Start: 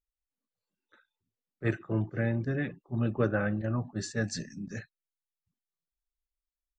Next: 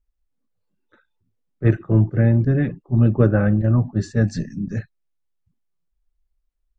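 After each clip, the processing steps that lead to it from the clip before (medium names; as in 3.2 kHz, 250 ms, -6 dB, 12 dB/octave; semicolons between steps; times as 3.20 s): tilt EQ -3 dB/octave; trim +6 dB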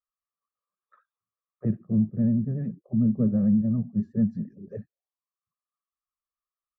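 comb 1.7 ms, depth 71%; auto-wah 220–1200 Hz, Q 6.8, down, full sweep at -18.5 dBFS; vibrato 11 Hz 62 cents; trim +4 dB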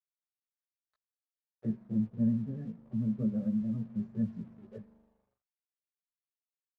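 spring tank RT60 3.2 s, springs 40 ms, chirp 40 ms, DRR 16 dB; crossover distortion -52 dBFS; chorus voices 4, 0.54 Hz, delay 16 ms, depth 2.5 ms; trim -6 dB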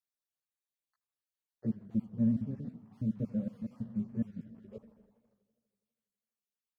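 random holes in the spectrogram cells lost 37%; modulated delay 82 ms, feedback 75%, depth 159 cents, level -19.5 dB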